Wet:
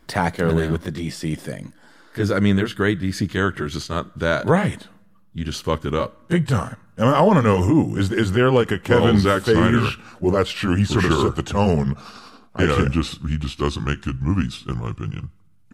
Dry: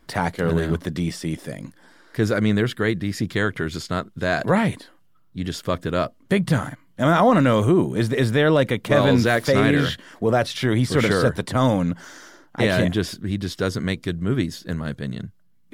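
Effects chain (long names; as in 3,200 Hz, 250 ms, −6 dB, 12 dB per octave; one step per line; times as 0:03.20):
pitch glide at a constant tempo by −5.5 semitones starting unshifted
on a send: tilt shelving filter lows −7.5 dB + convolution reverb RT60 1.0 s, pre-delay 5 ms, DRR 21 dB
on the sum: level +2.5 dB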